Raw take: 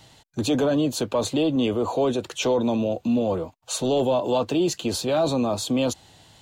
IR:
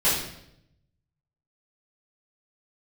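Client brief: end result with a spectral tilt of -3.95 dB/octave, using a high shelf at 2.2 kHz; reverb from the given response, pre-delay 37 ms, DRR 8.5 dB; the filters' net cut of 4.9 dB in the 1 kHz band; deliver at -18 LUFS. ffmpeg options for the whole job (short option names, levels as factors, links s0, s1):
-filter_complex "[0:a]equalizer=f=1000:t=o:g=-8,highshelf=f=2200:g=6.5,asplit=2[s0][s1];[1:a]atrim=start_sample=2205,adelay=37[s2];[s1][s2]afir=irnorm=-1:irlink=0,volume=0.0668[s3];[s0][s3]amix=inputs=2:normalize=0,volume=1.78"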